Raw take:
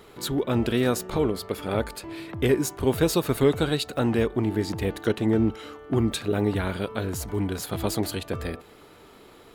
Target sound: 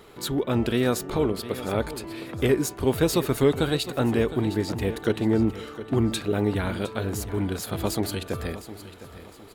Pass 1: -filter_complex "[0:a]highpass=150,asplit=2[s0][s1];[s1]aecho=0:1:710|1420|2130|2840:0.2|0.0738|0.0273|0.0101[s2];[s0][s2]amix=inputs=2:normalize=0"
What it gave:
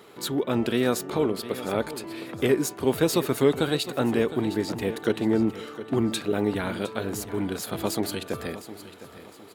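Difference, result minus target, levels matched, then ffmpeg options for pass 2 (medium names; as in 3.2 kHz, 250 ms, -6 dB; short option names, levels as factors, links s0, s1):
125 Hz band -4.5 dB
-filter_complex "[0:a]asplit=2[s0][s1];[s1]aecho=0:1:710|1420|2130|2840:0.2|0.0738|0.0273|0.0101[s2];[s0][s2]amix=inputs=2:normalize=0"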